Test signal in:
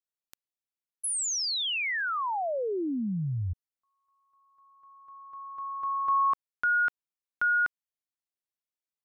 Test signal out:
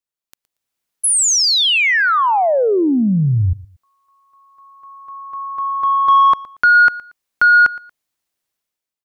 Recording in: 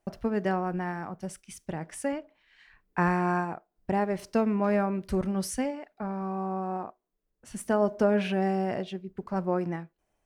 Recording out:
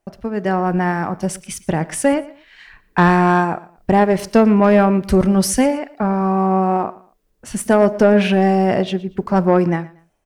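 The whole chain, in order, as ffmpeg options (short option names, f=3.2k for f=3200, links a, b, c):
-af "dynaudnorm=f=160:g=7:m=13dB,asoftclip=type=tanh:threshold=-6.5dB,aecho=1:1:116|232:0.1|0.028,volume=3dB"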